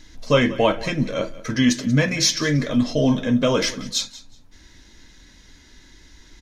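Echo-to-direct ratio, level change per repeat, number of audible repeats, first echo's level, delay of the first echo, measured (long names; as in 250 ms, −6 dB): −18.0 dB, −14.0 dB, 2, −18.0 dB, 185 ms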